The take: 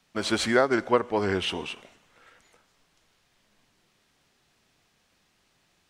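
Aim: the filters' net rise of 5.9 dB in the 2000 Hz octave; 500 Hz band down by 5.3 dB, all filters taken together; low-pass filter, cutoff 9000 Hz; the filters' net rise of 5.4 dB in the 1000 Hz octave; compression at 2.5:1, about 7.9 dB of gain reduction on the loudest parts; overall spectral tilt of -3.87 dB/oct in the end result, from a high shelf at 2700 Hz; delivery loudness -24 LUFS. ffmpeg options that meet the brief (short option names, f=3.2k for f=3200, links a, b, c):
-af "lowpass=9k,equalizer=f=500:t=o:g=-9,equalizer=f=1k:t=o:g=7.5,equalizer=f=2k:t=o:g=8,highshelf=f=2.7k:g=-6,acompressor=threshold=-26dB:ratio=2.5,volume=5.5dB"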